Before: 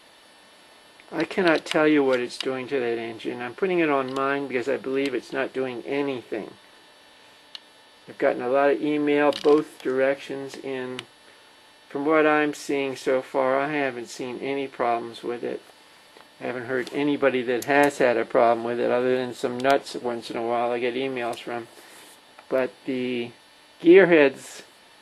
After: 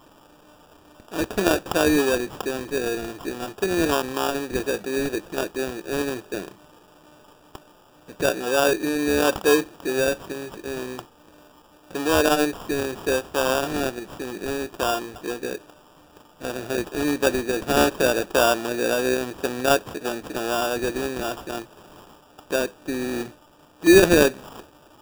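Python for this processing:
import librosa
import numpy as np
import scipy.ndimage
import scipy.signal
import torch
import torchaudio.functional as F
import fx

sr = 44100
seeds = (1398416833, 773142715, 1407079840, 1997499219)

y = fx.sample_hold(x, sr, seeds[0], rate_hz=2100.0, jitter_pct=0)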